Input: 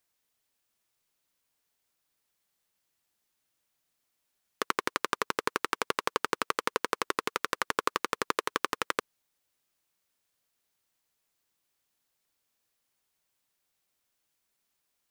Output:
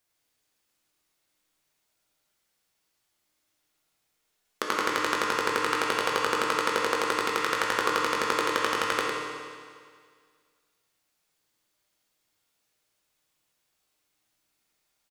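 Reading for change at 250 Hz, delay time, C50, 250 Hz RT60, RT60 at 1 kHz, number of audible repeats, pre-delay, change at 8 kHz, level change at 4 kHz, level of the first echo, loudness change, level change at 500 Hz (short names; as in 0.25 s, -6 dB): +5.5 dB, 0.105 s, -2.0 dB, 1.9 s, 1.9 s, 1, 6 ms, +4.0 dB, +5.5 dB, -6.0 dB, +5.0 dB, +6.0 dB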